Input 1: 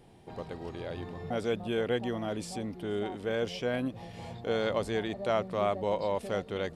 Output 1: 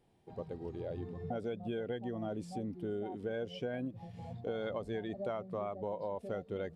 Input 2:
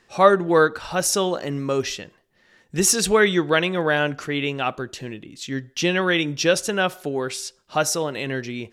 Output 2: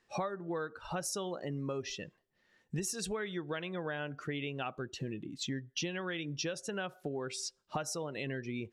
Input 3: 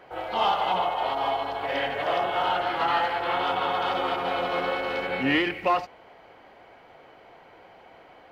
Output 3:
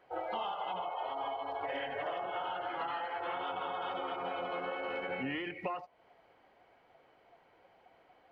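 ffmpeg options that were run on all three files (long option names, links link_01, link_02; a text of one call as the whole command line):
ffmpeg -i in.wav -af "afftdn=noise_reduction=14:noise_floor=-34,adynamicequalizer=threshold=0.01:dfrequency=150:dqfactor=2.4:tfrequency=150:tqfactor=2.4:attack=5:release=100:ratio=0.375:range=1.5:mode=boostabove:tftype=bell,acompressor=threshold=-34dB:ratio=16" out.wav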